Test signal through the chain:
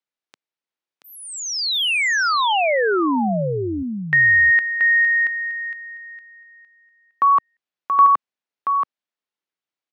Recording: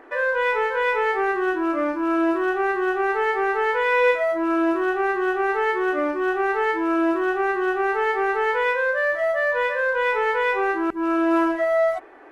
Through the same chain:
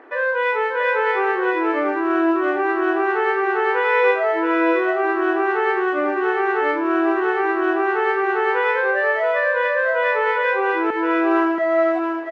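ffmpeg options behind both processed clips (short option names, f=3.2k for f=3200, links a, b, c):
-af "highpass=190,lowpass=4.2k,aecho=1:1:679:0.562,volume=1.5dB"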